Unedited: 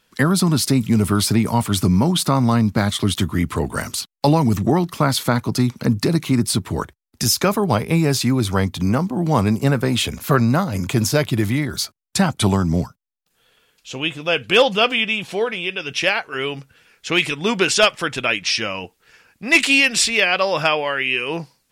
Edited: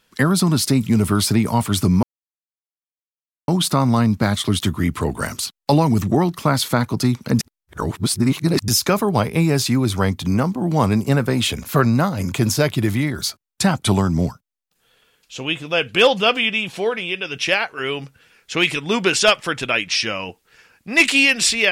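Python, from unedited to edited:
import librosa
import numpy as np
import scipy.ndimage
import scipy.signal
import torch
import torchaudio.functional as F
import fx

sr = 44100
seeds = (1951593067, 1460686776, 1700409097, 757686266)

y = fx.edit(x, sr, fx.insert_silence(at_s=2.03, length_s=1.45),
    fx.reverse_span(start_s=5.94, length_s=1.29), tone=tone)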